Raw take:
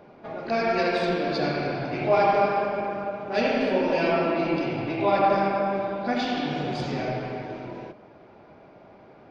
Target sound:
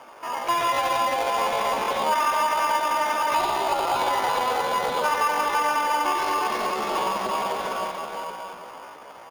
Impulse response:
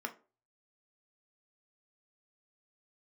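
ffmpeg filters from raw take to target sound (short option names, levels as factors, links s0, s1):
-filter_complex "[0:a]bandreject=f=120:t=h:w=4,bandreject=f=240:t=h:w=4,bandreject=f=360:t=h:w=4,bandreject=f=480:t=h:w=4,bandreject=f=600:t=h:w=4,bandreject=f=720:t=h:w=4,bandreject=f=840:t=h:w=4,bandreject=f=960:t=h:w=4,bandreject=f=1080:t=h:w=4,bandreject=f=1200:t=h:w=4,bandreject=f=1320:t=h:w=4,bandreject=f=1440:t=h:w=4,bandreject=f=1560:t=h:w=4,bandreject=f=1680:t=h:w=4,bandreject=f=1800:t=h:w=4,bandreject=f=1920:t=h:w=4,bandreject=f=2040:t=h:w=4,bandreject=f=2160:t=h:w=4,bandreject=f=2280:t=h:w=4,bandreject=f=2400:t=h:w=4,bandreject=f=2520:t=h:w=4,bandreject=f=2640:t=h:w=4,bandreject=f=2760:t=h:w=4,bandreject=f=2880:t=h:w=4,bandreject=f=3000:t=h:w=4,bandreject=f=3120:t=h:w=4,bandreject=f=3240:t=h:w=4,bandreject=f=3360:t=h:w=4,bandreject=f=3480:t=h:w=4,bandreject=f=3600:t=h:w=4,bandreject=f=3720:t=h:w=4,bandreject=f=3840:t=h:w=4,bandreject=f=3960:t=h:w=4,bandreject=f=4080:t=h:w=4,bandreject=f=4200:t=h:w=4,bandreject=f=4320:t=h:w=4,bandreject=f=4440:t=h:w=4,bandreject=f=4560:t=h:w=4,bandreject=f=4680:t=h:w=4,asplit=2[s0][s1];[s1]aecho=0:1:350|647.5|900.4|1115|1298:0.631|0.398|0.251|0.158|0.1[s2];[s0][s2]amix=inputs=2:normalize=0,acompressor=threshold=0.0562:ratio=8,acrossover=split=380 3000:gain=0.2 1 0.0891[s3][s4][s5];[s3][s4][s5]amix=inputs=3:normalize=0,asplit=2[s6][s7];[s7]acrusher=samples=17:mix=1:aa=0.000001,volume=0.708[s8];[s6][s8]amix=inputs=2:normalize=0,asetrate=66075,aresample=44100,atempo=0.66742,volume=1.58"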